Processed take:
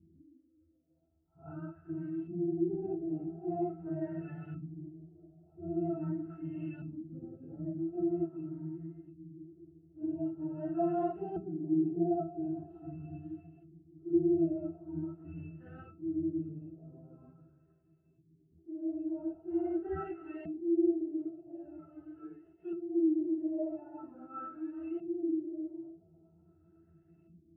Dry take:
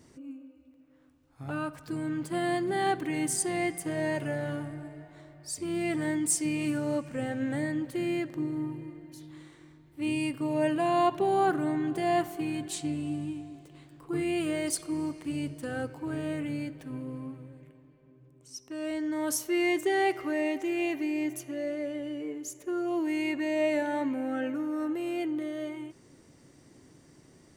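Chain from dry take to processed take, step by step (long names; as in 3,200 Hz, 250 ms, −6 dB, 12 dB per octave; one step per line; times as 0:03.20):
random phases in long frames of 100 ms
low-pass filter 4,000 Hz 12 dB per octave
in parallel at −8 dB: sample-and-hold swept by an LFO 16×, swing 100% 0.42 Hz
on the sum: auto-filter low-pass saw up 0.44 Hz 220–2,600 Hz
resonances in every octave E, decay 0.18 s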